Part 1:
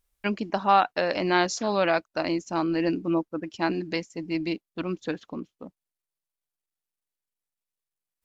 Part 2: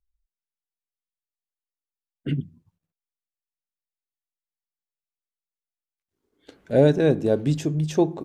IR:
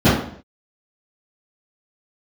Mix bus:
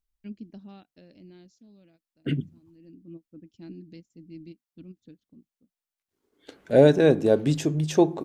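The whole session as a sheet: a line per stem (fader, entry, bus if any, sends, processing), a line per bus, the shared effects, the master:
-9.0 dB, 0.00 s, no send, EQ curve 240 Hz 0 dB, 1000 Hz -30 dB, 3300 Hz -14 dB; ending taper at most 570 dB/s; auto duck -19 dB, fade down 1.70 s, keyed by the second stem
+2.5 dB, 0.00 s, no send, low shelf 170 Hz -8 dB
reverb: off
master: dry

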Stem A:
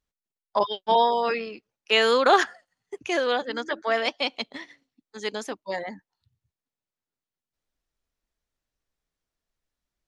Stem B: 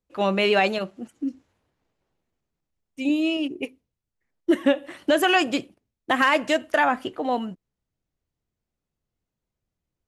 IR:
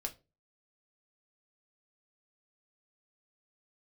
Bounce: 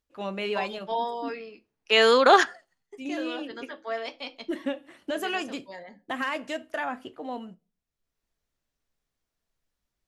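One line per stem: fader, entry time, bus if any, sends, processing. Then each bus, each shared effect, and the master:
0.0 dB, 0.00 s, send -13 dB, auto duck -21 dB, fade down 0.25 s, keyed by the second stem
-14.0 dB, 0.00 s, send -4 dB, dry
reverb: on, pre-delay 4 ms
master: dry

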